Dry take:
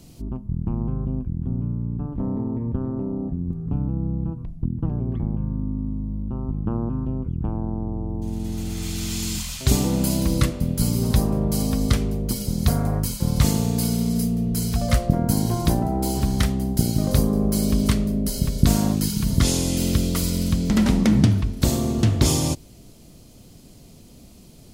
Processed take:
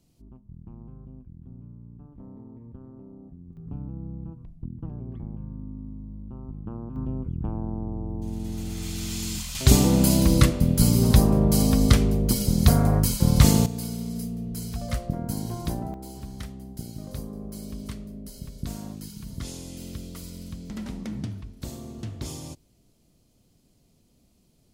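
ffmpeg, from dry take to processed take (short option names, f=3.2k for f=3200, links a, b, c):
-af "asetnsamples=n=441:p=0,asendcmd='3.57 volume volume -11dB;6.96 volume volume -4dB;9.55 volume volume 2.5dB;13.66 volume volume -9.5dB;15.94 volume volume -16.5dB',volume=-18.5dB"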